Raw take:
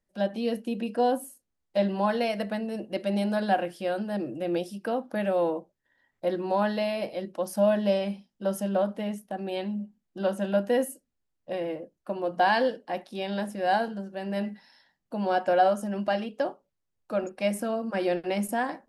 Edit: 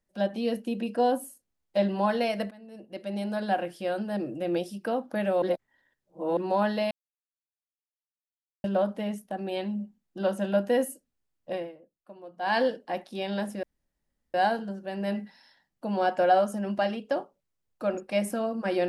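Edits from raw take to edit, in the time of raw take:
2.51–4.45 fade in equal-power, from -23.5 dB
5.42–6.37 reverse
6.91–8.64 mute
11.55–12.57 dip -15.5 dB, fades 0.17 s
13.63 insert room tone 0.71 s

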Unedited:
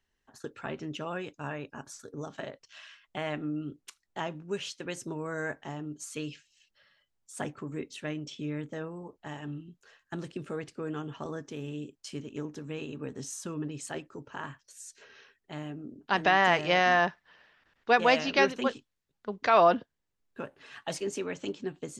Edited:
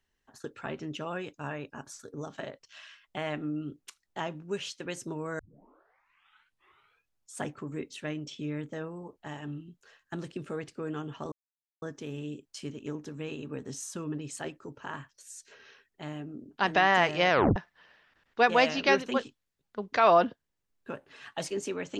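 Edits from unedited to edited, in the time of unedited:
5.39 tape start 1.98 s
11.32 insert silence 0.50 s
16.8 tape stop 0.26 s

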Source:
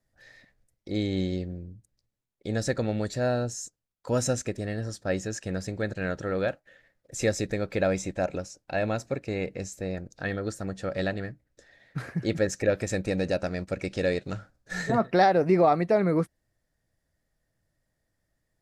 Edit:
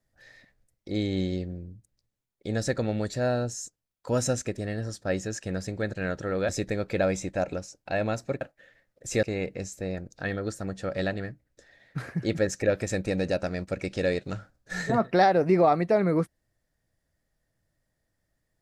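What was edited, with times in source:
6.49–7.31 move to 9.23

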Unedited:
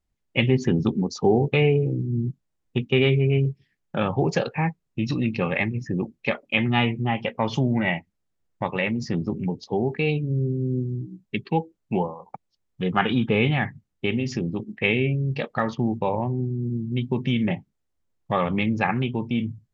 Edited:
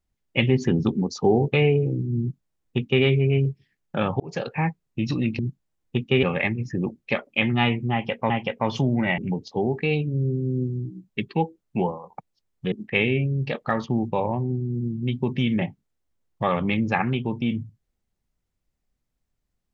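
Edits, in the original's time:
2.2–3.04 copy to 5.39
4.2–4.55 fade in
7.08–7.46 loop, 2 plays
7.96–9.34 cut
12.88–14.61 cut

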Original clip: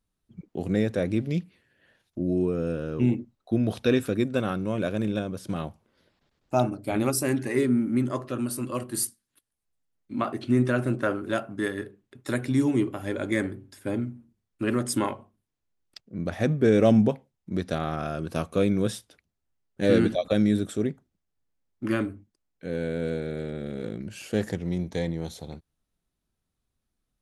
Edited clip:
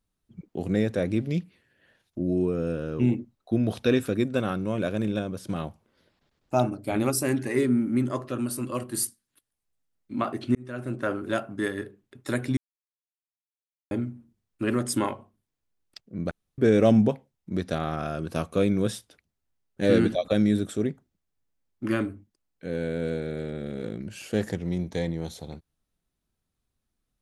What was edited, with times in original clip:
10.55–11.21 fade in
12.57–13.91 mute
16.31–16.58 room tone

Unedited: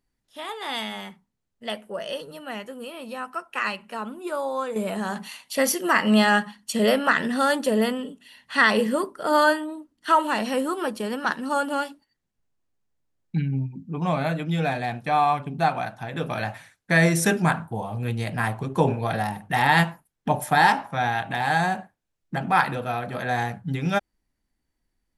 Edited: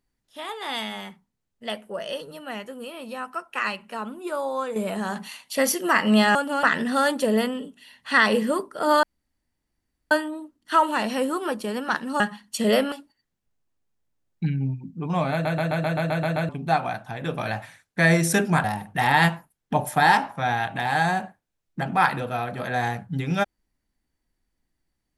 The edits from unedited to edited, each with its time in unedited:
6.35–7.07 swap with 11.56–11.84
9.47 insert room tone 1.08 s
14.24 stutter in place 0.13 s, 9 plays
17.56–19.19 cut

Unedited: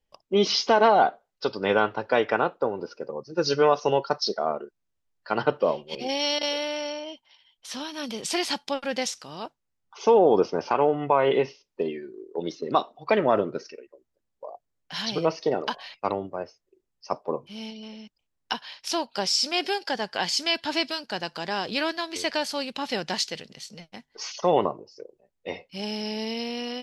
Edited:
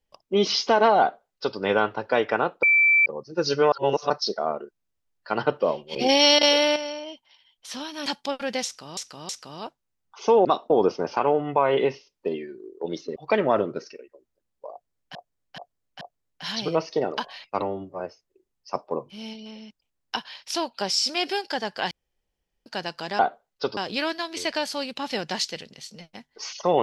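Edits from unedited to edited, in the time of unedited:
1–1.58 copy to 21.56
2.63–3.06 bleep 2330 Hz -14.5 dBFS
3.72–4.1 reverse
5.96–6.76 gain +9 dB
8.06–8.49 cut
9.08–9.4 loop, 3 plays
12.7–12.95 move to 10.24
14.51–14.94 loop, 4 plays
16.11–16.37 stretch 1.5×
20.28–21.03 room tone

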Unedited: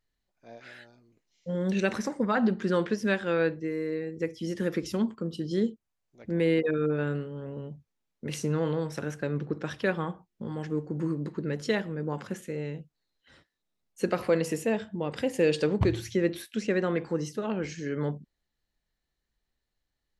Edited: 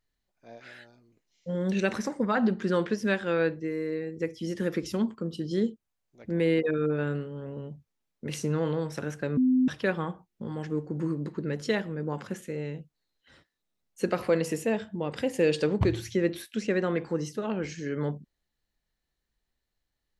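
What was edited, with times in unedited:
9.37–9.68 bleep 256 Hz -19 dBFS

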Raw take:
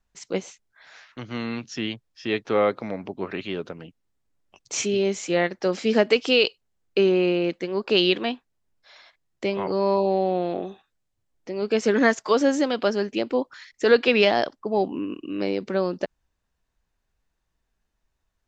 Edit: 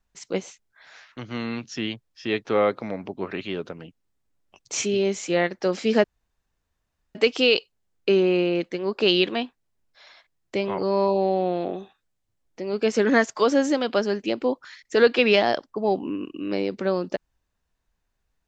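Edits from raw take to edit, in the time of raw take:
6.04 insert room tone 1.11 s

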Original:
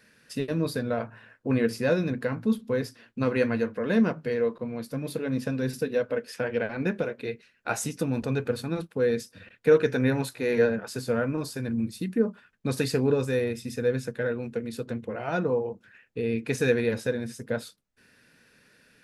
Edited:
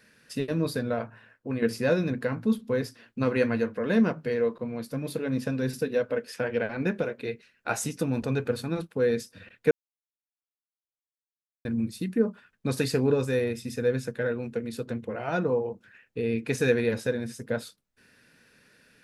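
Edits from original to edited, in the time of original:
0.85–1.62 fade out linear, to -7.5 dB
9.71–11.65 mute

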